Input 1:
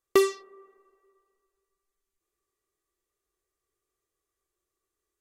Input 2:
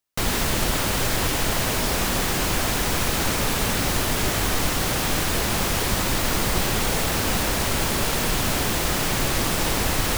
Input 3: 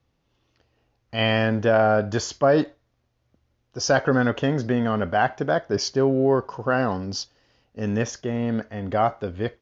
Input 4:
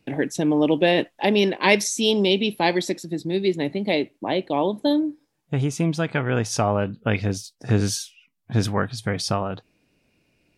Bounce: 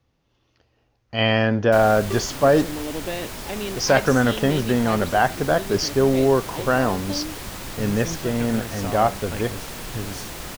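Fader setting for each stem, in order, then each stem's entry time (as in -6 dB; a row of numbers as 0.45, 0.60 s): -10.5, -11.0, +2.0, -11.5 dB; 1.95, 1.55, 0.00, 2.25 s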